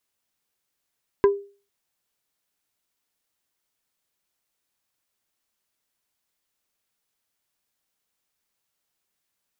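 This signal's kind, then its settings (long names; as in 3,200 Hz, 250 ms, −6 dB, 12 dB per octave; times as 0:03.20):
struck wood plate, lowest mode 401 Hz, decay 0.37 s, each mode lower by 8 dB, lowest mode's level −10 dB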